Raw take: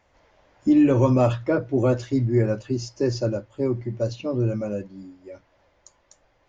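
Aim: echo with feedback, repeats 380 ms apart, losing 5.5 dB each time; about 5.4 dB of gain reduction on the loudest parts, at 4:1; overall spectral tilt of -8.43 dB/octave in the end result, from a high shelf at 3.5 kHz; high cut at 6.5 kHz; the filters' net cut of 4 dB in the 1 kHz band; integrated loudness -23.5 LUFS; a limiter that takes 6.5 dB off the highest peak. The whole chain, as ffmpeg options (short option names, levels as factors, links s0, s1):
-af "lowpass=6500,equalizer=f=1000:t=o:g=-5,highshelf=f=3500:g=-5,acompressor=threshold=0.1:ratio=4,alimiter=limit=0.106:level=0:latency=1,aecho=1:1:380|760|1140|1520|1900|2280|2660:0.531|0.281|0.149|0.079|0.0419|0.0222|0.0118,volume=1.68"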